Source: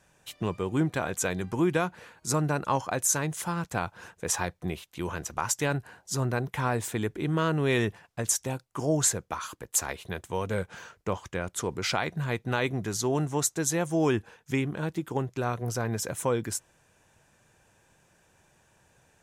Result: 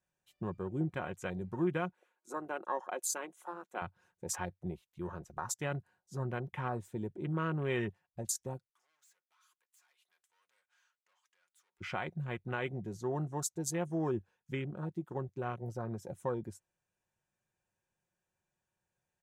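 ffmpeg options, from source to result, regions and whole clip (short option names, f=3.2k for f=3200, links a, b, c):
-filter_complex "[0:a]asettb=1/sr,asplit=3[a][b][c];[a]atrim=end=1.934[d];[b]atrim=start=1.93:end=3.82,asetpts=PTS-STARTPTS,afade=t=in:d=0.004:c=qsin,afade=t=out:st=1.886:d=0.004:c=qsin,highpass=f=300:w=0.5412,highpass=f=300:w=1.3066,equalizer=f=4.8k:t=o:w=0.37:g=-9,bandreject=f=1.8k:w=18[e];[c]atrim=start=3.816[f];[d][e]acrossfade=d=0.004:c1=hsin:c2=qsin[g];[g][f]acrossfade=d=0.004:c1=qsin:c2=hsin,asettb=1/sr,asplit=3[h][i][j];[h]atrim=end=8.704[k];[i]atrim=start=8.7:end=11.81,asetpts=PTS-STARTPTS,afade=t=in:d=0.004:c=qsin,afade=t=out:st=3.106:d=0.004:c=qsin,aeval=exprs='(tanh(70.8*val(0)+0.35)-tanh(0.35))/70.8':c=same,acompressor=threshold=-40dB:ratio=3:attack=3.2:release=140:knee=1:detection=peak,highpass=1.3k[l];[j]atrim=start=11.806[m];[k][l]acrossfade=d=0.004:c1=hsin:c2=qsin[n];[n][m]acrossfade=d=0.004:c1=qsin:c2=hsin,afwtdn=0.02,equalizer=f=94:w=4:g=6,aecho=1:1:5.5:0.39,volume=-9dB"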